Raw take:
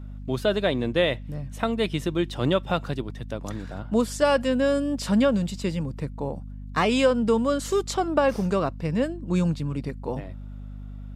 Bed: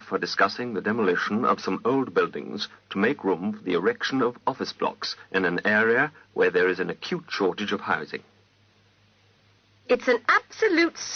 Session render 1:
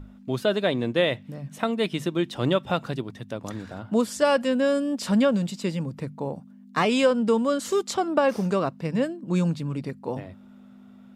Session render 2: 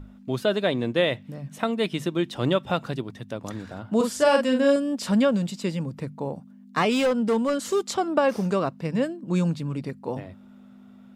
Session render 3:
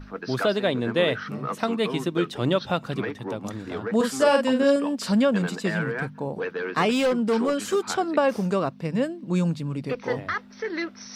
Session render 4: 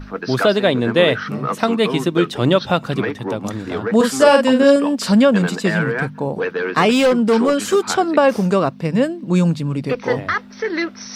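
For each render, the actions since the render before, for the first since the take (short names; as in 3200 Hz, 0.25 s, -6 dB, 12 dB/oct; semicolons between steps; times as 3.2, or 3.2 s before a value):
notches 50/100/150 Hz
3.96–4.76 doubler 43 ms -4 dB; 6.91–7.89 hard clip -18 dBFS
add bed -9 dB
gain +8 dB; limiter -1 dBFS, peak gain reduction 1.5 dB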